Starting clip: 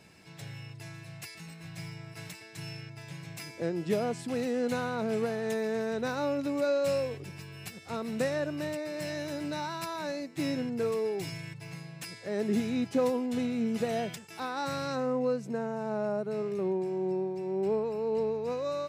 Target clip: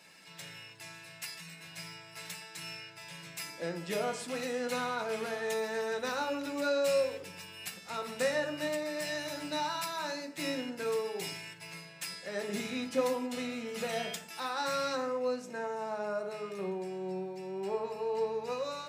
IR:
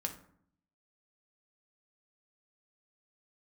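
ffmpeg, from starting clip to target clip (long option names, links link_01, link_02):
-filter_complex "[0:a]highpass=frequency=1200:poles=1[link_01];[1:a]atrim=start_sample=2205[link_02];[link_01][link_02]afir=irnorm=-1:irlink=0,volume=4dB"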